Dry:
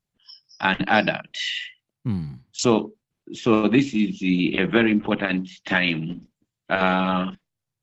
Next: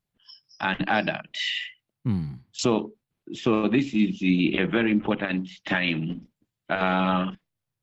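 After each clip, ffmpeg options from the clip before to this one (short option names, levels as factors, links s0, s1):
-af "equalizer=f=6600:t=o:w=0.86:g=-5,alimiter=limit=0.282:level=0:latency=1:release=249"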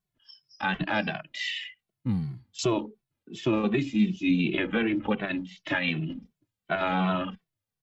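-filter_complex "[0:a]asplit=2[s0][s1];[s1]adelay=2.2,afreqshift=-2.7[s2];[s0][s2]amix=inputs=2:normalize=1"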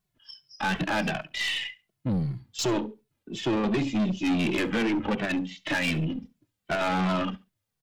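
-af "aeval=exprs='0.224*(cos(1*acos(clip(val(0)/0.224,-1,1)))-cos(1*PI/2))+0.02*(cos(6*acos(clip(val(0)/0.224,-1,1)))-cos(6*PI/2))':c=same,asoftclip=type=tanh:threshold=0.0447,aecho=1:1:69|138:0.0841|0.0194,volume=1.88"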